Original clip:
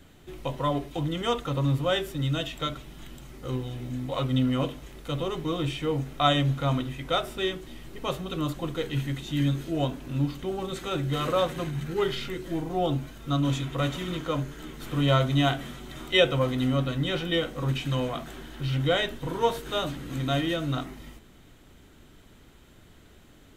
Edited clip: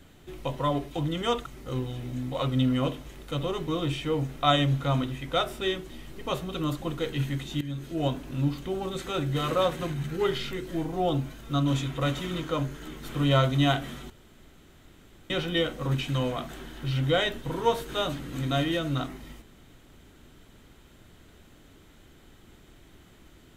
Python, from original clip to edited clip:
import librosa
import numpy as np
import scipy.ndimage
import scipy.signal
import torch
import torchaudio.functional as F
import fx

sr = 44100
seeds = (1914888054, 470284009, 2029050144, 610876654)

y = fx.edit(x, sr, fx.cut(start_s=1.46, length_s=1.77),
    fx.fade_in_from(start_s=9.38, length_s=0.45, floor_db=-16.5),
    fx.room_tone_fill(start_s=15.87, length_s=1.2), tone=tone)